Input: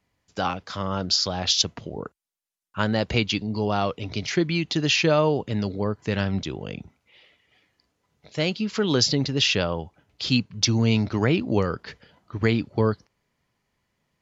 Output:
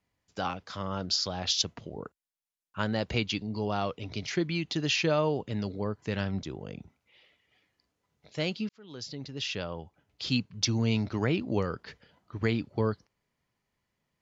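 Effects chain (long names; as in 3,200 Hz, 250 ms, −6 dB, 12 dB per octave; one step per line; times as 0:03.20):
0:06.31–0:06.80: parametric band 2,900 Hz −6.5 dB 1 octave
0:08.69–0:10.29: fade in
level −6.5 dB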